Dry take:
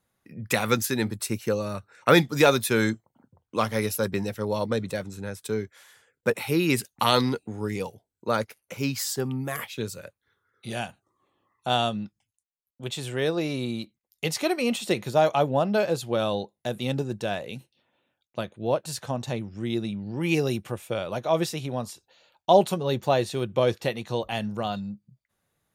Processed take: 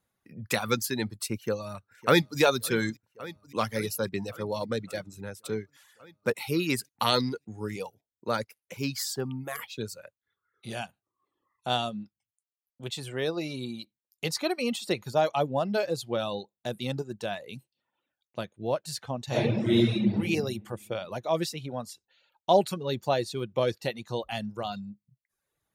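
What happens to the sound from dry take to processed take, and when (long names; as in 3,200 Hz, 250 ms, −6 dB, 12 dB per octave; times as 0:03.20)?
0:01.35–0:02.40: delay throw 560 ms, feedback 75%, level −16.5 dB
0:19.27–0:20.11: thrown reverb, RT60 1.8 s, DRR −11.5 dB
whole clip: reverb reduction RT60 0.8 s; dynamic equaliser 4,500 Hz, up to +5 dB, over −49 dBFS, Q 2.9; level −3.5 dB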